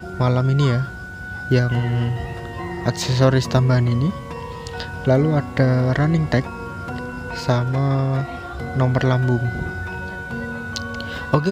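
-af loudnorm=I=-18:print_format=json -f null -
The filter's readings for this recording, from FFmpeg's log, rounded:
"input_i" : "-21.3",
"input_tp" : "-2.4",
"input_lra" : "2.5",
"input_thresh" : "-31.4",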